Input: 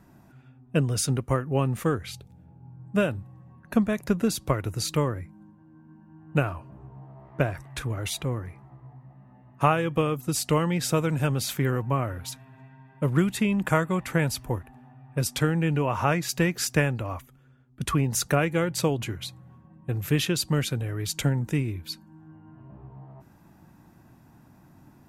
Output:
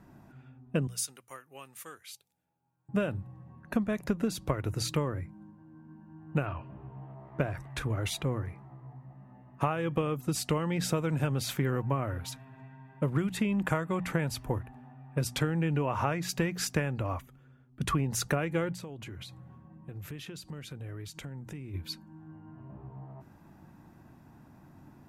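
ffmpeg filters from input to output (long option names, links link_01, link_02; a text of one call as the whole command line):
ffmpeg -i in.wav -filter_complex "[0:a]asettb=1/sr,asplit=3[link_01][link_02][link_03];[link_01]atrim=end=0.874[link_04];[link_02]atrim=start=0.87:end=2.89,asetpts=PTS-STARTPTS,afade=type=in:duration=0.004:curve=qsin,afade=type=out:start_time=2.016:duration=0.004:curve=qsin,aderivative[link_05];[link_03]atrim=start=2.886[link_06];[link_04][link_05]acrossfade=duration=0.004:curve1=hsin:curve2=qsin[link_07];[link_07][link_06]acrossfade=duration=0.004:curve1=qsin:curve2=hsin,asettb=1/sr,asplit=3[link_08][link_09][link_10];[link_08]atrim=end=6.464[link_11];[link_09]atrim=start=6.46:end=7.15,asetpts=PTS-STARTPTS,afade=type=in:duration=0.004:curve=qsin,afade=type=out:start_time=0.686:duration=0.004:curve=qsin,lowpass=frequency=3000:width_type=q:width=2.2[link_12];[link_10]atrim=start=7.146[link_13];[link_11][link_12]acrossfade=duration=0.004:curve1=hsin:curve2=qsin[link_14];[link_14][link_13]acrossfade=duration=0.004:curve1=qsin:curve2=hsin,asplit=3[link_15][link_16][link_17];[link_15]afade=type=out:start_time=18.73:duration=0.02[link_18];[link_16]acompressor=threshold=-38dB:ratio=8:attack=3.2:release=140:knee=1:detection=peak,afade=type=in:start_time=18.73:duration=0.02,afade=type=out:start_time=21.73:duration=0.02[link_19];[link_17]afade=type=in:start_time=21.73:duration=0.02[link_20];[link_18][link_19][link_20]amix=inputs=3:normalize=0,highshelf=frequency=4000:gain=-6.5,bandreject=frequency=60:width_type=h:width=6,bandreject=frequency=120:width_type=h:width=6,bandreject=frequency=180:width_type=h:width=6,acompressor=threshold=-25dB:ratio=5" out.wav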